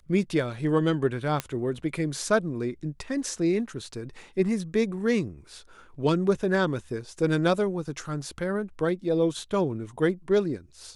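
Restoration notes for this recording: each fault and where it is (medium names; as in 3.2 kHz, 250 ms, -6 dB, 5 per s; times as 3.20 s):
1.40 s: pop -12 dBFS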